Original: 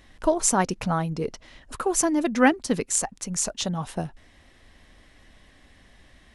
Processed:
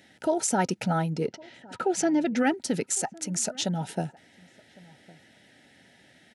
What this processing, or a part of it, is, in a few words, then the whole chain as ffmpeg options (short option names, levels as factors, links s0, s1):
PA system with an anti-feedback notch: -filter_complex "[0:a]asettb=1/sr,asplit=3[s0][s1][s2];[s0]atrim=end=1.274[s3];[s1]atrim=start=1.27:end=2.37,asetpts=PTS-STARTPTS,afade=t=in:d=0.004:c=qsin,afade=t=out:st=1.096:d=0.004:c=qsin,lowpass=5100[s4];[s2]atrim=start=2.366[s5];[s3][s4]acrossfade=d=0.004:c1=hsin:c2=qsin[s6];[s6][s5]acrossfade=d=0.004:c1=qsin:c2=hsin,highpass=f=120:w=0.5412,highpass=f=120:w=1.3066,asuperstop=centerf=1100:order=20:qfactor=3.9,alimiter=limit=0.158:level=0:latency=1:release=32,asplit=2[s7][s8];[s8]adelay=1108,volume=0.0708,highshelf=f=4000:g=-24.9[s9];[s7][s9]amix=inputs=2:normalize=0"